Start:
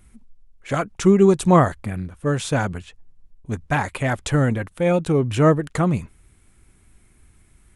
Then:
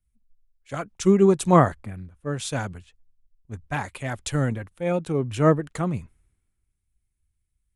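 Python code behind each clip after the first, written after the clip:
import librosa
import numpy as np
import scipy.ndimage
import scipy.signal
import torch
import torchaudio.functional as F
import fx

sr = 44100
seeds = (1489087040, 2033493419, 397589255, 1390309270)

y = fx.band_widen(x, sr, depth_pct=70)
y = y * librosa.db_to_amplitude(-6.0)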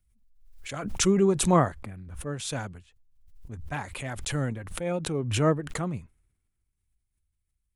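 y = fx.pre_swell(x, sr, db_per_s=55.0)
y = y * librosa.db_to_amplitude(-5.5)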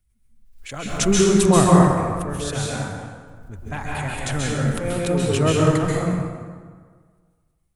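y = fx.rev_plate(x, sr, seeds[0], rt60_s=1.7, hf_ratio=0.6, predelay_ms=120, drr_db=-4.5)
y = y * librosa.db_to_amplitude(2.0)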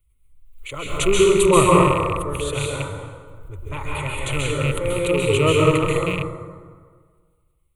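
y = fx.rattle_buzz(x, sr, strikes_db=-22.0, level_db=-19.0)
y = fx.fixed_phaser(y, sr, hz=1100.0, stages=8)
y = y * librosa.db_to_amplitude(4.5)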